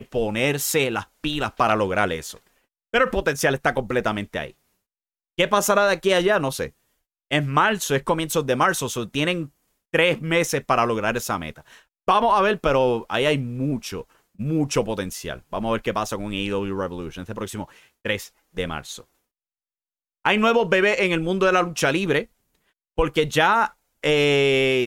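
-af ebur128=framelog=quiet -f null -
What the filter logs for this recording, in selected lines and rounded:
Integrated loudness:
  I:         -22.0 LUFS
  Threshold: -32.6 LUFS
Loudness range:
  LRA:         6.9 LU
  Threshold: -43.1 LUFS
  LRA low:   -28.1 LUFS
  LRA high:  -21.2 LUFS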